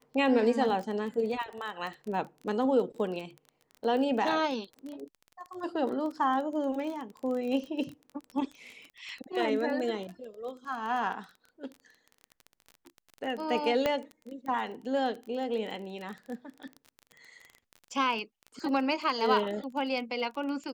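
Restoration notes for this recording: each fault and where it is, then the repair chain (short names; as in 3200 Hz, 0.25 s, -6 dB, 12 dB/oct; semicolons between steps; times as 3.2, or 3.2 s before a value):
crackle 22/s -36 dBFS
13.86 pop -14 dBFS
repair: de-click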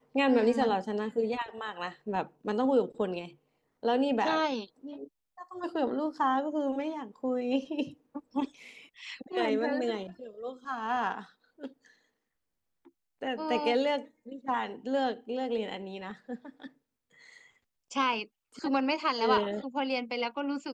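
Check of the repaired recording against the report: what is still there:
none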